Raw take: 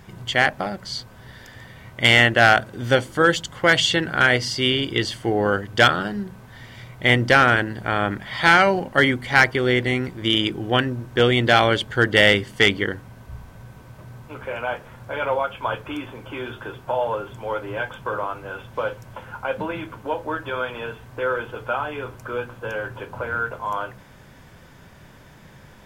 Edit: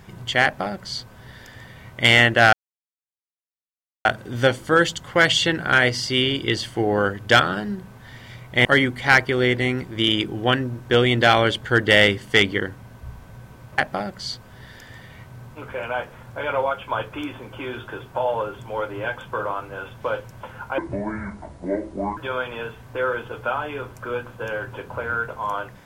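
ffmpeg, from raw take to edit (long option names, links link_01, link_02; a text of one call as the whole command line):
ffmpeg -i in.wav -filter_complex "[0:a]asplit=7[link_01][link_02][link_03][link_04][link_05][link_06][link_07];[link_01]atrim=end=2.53,asetpts=PTS-STARTPTS,afade=type=out:start_time=2.526:duration=0.004:curve=hsin,apad=pad_dur=1.52[link_08];[link_02]atrim=start=2.53:end=7.132,asetpts=PTS-STARTPTS,afade=type=in:duration=0.004:curve=hsin[link_09];[link_03]atrim=start=8.908:end=14.042[link_10];[link_04]atrim=start=0.438:end=1.972[link_11];[link_05]atrim=start=14.038:end=19.514[link_12];[link_06]atrim=start=19.51:end=20.4,asetpts=PTS-STARTPTS,asetrate=28224,aresample=44100[link_13];[link_07]atrim=start=20.396[link_14];[link_08][link_09]concat=n=2:v=0:a=1[link_15];[link_15][link_10]acrossfade=duration=0.004:curve1=hsin:curve2=hsin[link_16];[link_16][link_11]acrossfade=duration=0.004:curve1=hsin:curve2=hsin[link_17];[link_17][link_12]acrossfade=duration=0.004:curve1=hsin:curve2=hsin[link_18];[link_18][link_13]acrossfade=duration=0.004:curve1=hsin:curve2=hsin[link_19];[link_19][link_14]acrossfade=duration=0.004:curve1=hsin:curve2=hsin" out.wav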